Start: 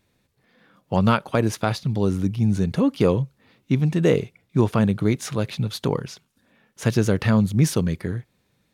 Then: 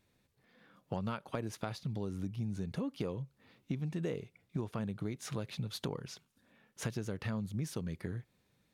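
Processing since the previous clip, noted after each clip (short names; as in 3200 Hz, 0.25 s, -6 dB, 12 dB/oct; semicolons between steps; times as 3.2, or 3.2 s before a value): compressor 6:1, threshold -28 dBFS, peak gain reduction 15 dB; gain -6.5 dB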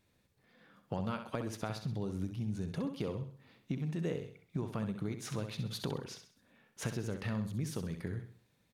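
feedback echo 65 ms, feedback 40%, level -8.5 dB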